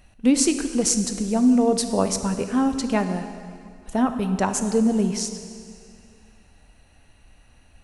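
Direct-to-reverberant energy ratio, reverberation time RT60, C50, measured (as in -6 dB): 7.5 dB, 2.3 s, 9.0 dB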